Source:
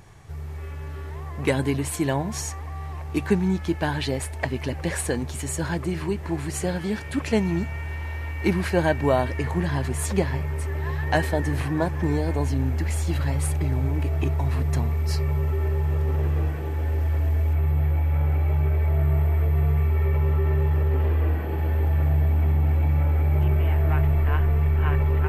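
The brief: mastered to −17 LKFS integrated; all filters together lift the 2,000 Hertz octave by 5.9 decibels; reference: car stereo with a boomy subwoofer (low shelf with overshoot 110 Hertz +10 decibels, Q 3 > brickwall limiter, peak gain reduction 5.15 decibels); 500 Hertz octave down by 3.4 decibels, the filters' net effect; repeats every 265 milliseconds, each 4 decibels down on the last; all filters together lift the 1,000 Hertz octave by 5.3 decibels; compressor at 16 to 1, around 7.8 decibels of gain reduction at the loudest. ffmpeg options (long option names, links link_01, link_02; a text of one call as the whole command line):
ffmpeg -i in.wav -af "equalizer=frequency=500:width_type=o:gain=-6.5,equalizer=frequency=1000:width_type=o:gain=8,equalizer=frequency=2000:width_type=o:gain=5,acompressor=threshold=-22dB:ratio=16,lowshelf=frequency=110:width_type=q:width=3:gain=10,aecho=1:1:265|530|795|1060|1325|1590|1855|2120|2385:0.631|0.398|0.25|0.158|0.0994|0.0626|0.0394|0.0249|0.0157,volume=-0.5dB,alimiter=limit=-8.5dB:level=0:latency=1" out.wav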